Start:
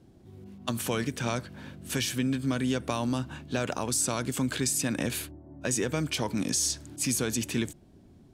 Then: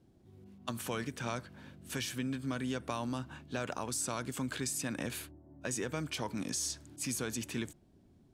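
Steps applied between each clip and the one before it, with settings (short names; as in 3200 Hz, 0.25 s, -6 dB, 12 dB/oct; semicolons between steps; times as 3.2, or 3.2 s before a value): dynamic EQ 1200 Hz, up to +4 dB, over -47 dBFS, Q 0.9; gain -8.5 dB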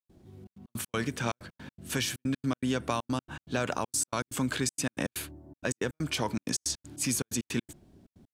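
step gate ".xxxx.x.x" 160 bpm -60 dB; gain +7 dB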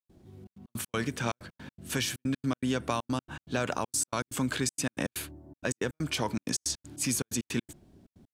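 nothing audible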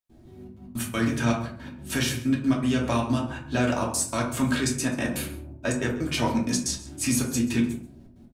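echo 0.134 s -18.5 dB; reverb RT60 0.50 s, pre-delay 3 ms, DRR -3.5 dB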